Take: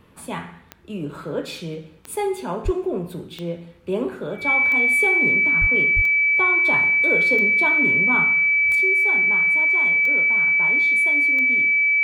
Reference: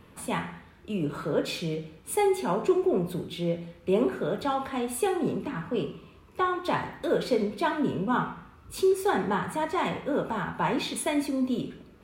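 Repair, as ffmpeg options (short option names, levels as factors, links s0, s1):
-filter_complex "[0:a]adeclick=t=4,bandreject=f=2300:w=30,asplit=3[s0][s1][s2];[s0]afade=t=out:st=2.64:d=0.02[s3];[s1]highpass=f=140:w=0.5412,highpass=f=140:w=1.3066,afade=t=in:st=2.64:d=0.02,afade=t=out:st=2.76:d=0.02[s4];[s2]afade=t=in:st=2.76:d=0.02[s5];[s3][s4][s5]amix=inputs=3:normalize=0,asplit=3[s6][s7][s8];[s6]afade=t=out:st=5.6:d=0.02[s9];[s7]highpass=f=140:w=0.5412,highpass=f=140:w=1.3066,afade=t=in:st=5.6:d=0.02,afade=t=out:st=5.72:d=0.02[s10];[s8]afade=t=in:st=5.72:d=0.02[s11];[s9][s10][s11]amix=inputs=3:normalize=0,asplit=3[s12][s13][s14];[s12]afade=t=out:st=5.95:d=0.02[s15];[s13]highpass=f=140:w=0.5412,highpass=f=140:w=1.3066,afade=t=in:st=5.95:d=0.02,afade=t=out:st=6.07:d=0.02[s16];[s14]afade=t=in:st=6.07:d=0.02[s17];[s15][s16][s17]amix=inputs=3:normalize=0,asetnsamples=n=441:p=0,asendcmd='8.75 volume volume 8dB',volume=1"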